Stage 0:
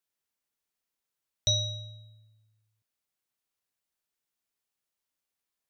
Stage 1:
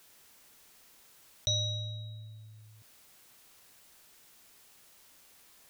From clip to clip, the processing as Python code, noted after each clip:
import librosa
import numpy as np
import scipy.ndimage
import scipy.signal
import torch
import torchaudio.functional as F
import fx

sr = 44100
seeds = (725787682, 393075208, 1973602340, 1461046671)

y = fx.env_flatten(x, sr, amount_pct=50)
y = y * librosa.db_to_amplitude(-5.0)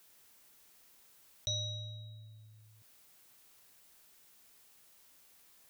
y = fx.high_shelf(x, sr, hz=11000.0, db=5.0)
y = y * librosa.db_to_amplitude(-6.0)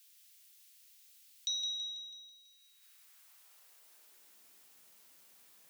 y = fx.filter_sweep_highpass(x, sr, from_hz=2900.0, to_hz=160.0, start_s=2.43, end_s=4.61, q=1.0)
y = fx.echo_feedback(y, sr, ms=164, feedback_pct=58, wet_db=-8)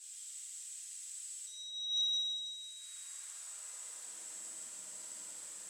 y = fx.over_compress(x, sr, threshold_db=-44.0, ratio=-0.5)
y = fx.lowpass_res(y, sr, hz=7900.0, q=12.0)
y = fx.rev_fdn(y, sr, rt60_s=2.5, lf_ratio=0.75, hf_ratio=0.45, size_ms=29.0, drr_db=-9.5)
y = y * librosa.db_to_amplitude(-4.5)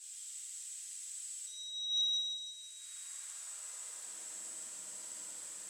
y = x + 10.0 ** (-14.0 / 20.0) * np.pad(x, (int(272 * sr / 1000.0), 0))[:len(x)]
y = y * librosa.db_to_amplitude(1.0)